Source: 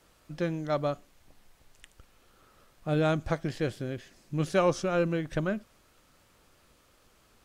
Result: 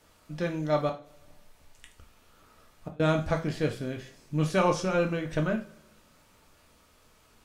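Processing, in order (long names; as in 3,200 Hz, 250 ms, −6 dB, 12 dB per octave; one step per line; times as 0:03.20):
0:00.89–0:03.00: gate with flip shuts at −26 dBFS, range −32 dB
coupled-rooms reverb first 0.35 s, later 1.6 s, from −25 dB, DRR 1.5 dB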